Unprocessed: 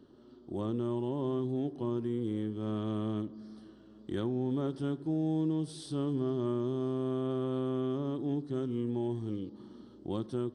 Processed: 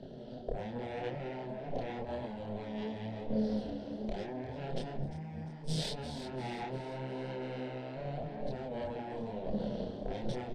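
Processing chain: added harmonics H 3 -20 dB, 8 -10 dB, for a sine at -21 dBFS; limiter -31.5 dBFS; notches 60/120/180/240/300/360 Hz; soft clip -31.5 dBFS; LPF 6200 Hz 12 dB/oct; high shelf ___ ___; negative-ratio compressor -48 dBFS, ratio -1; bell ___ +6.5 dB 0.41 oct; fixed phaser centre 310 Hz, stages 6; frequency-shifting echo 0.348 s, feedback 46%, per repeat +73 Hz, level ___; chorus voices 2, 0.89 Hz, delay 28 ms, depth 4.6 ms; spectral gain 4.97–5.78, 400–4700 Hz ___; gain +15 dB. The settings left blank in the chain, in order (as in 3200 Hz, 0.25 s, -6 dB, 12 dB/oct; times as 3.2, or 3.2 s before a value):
4800 Hz, -10.5 dB, 96 Hz, -11 dB, -6 dB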